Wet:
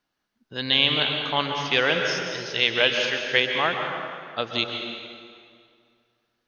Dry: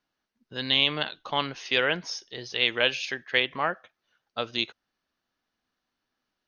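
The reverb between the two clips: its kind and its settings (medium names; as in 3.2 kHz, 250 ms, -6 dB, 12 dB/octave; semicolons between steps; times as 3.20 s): plate-style reverb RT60 2.2 s, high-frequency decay 0.8×, pre-delay 115 ms, DRR 3 dB; trim +2.5 dB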